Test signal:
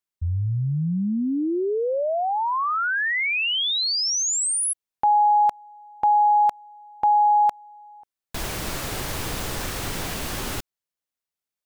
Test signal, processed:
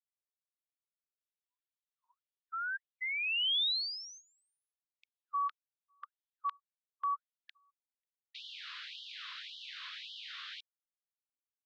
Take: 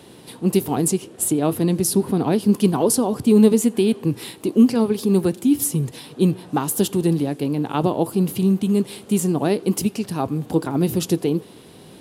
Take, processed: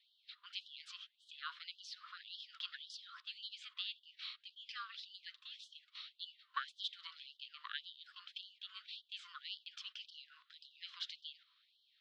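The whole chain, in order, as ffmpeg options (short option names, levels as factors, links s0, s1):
-af "equalizer=f=2000:t=o:w=0.82:g=-3.5,highpass=f=310:t=q:w=0.5412,highpass=f=310:t=q:w=1.307,lowpass=f=3500:t=q:w=0.5176,lowpass=f=3500:t=q:w=0.7071,lowpass=f=3500:t=q:w=1.932,afreqshift=300,aderivative,agate=range=0.282:threshold=0.00141:ratio=16:release=94:detection=peak,afftfilt=real='re*gte(b*sr/1024,960*pow(2900/960,0.5+0.5*sin(2*PI*1.8*pts/sr)))':imag='im*gte(b*sr/1024,960*pow(2900/960,0.5+0.5*sin(2*PI*1.8*pts/sr)))':win_size=1024:overlap=0.75,volume=1.19"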